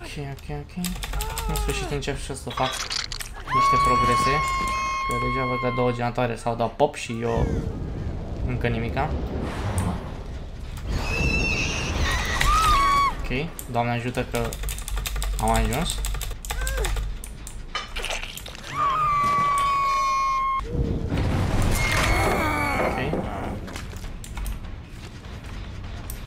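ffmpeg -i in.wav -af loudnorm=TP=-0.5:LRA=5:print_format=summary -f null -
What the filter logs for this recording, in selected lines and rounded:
Input Integrated:    -24.9 LUFS
Input True Peak:      -3.5 dBTP
Input LRA:            10.8 LU
Input Threshold:     -35.6 LUFS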